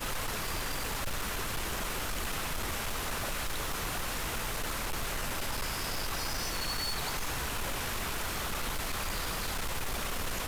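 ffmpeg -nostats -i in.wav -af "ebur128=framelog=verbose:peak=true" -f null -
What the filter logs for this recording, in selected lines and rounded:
Integrated loudness:
  I:         -34.1 LUFS
  Threshold: -44.1 LUFS
Loudness range:
  LRA:         0.8 LU
  Threshold: -54.0 LUFS
  LRA low:   -34.4 LUFS
  LRA high:  -33.6 LUFS
True peak:
  Peak:      -27.7 dBFS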